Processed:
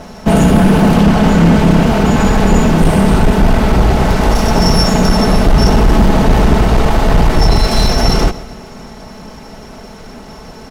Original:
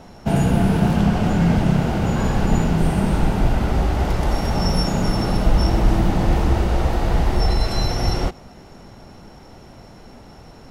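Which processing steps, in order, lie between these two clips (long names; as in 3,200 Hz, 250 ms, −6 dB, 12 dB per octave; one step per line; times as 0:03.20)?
lower of the sound and its delayed copy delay 4.6 ms
repeating echo 131 ms, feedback 52%, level −19.5 dB
sine wavefolder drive 6 dB, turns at −5 dBFS
level +2 dB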